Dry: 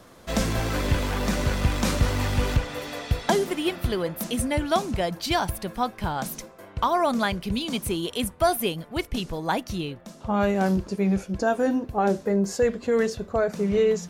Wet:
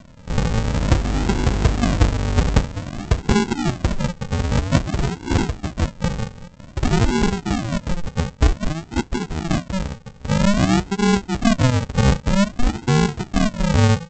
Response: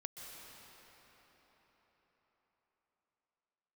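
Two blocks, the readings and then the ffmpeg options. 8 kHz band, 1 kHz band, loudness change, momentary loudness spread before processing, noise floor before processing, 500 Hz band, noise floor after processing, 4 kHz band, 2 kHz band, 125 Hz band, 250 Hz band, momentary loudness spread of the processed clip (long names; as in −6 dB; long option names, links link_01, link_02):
+3.5 dB, +0.5 dB, +5.0 dB, 7 LU, −48 dBFS, −1.5 dB, −43 dBFS, +3.0 dB, +3.5 dB, +10.0 dB, +6.0 dB, 8 LU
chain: -af "lowpass=2800,aresample=16000,acrusher=samples=37:mix=1:aa=0.000001:lfo=1:lforange=22.2:lforate=0.52,aresample=44100,volume=6dB"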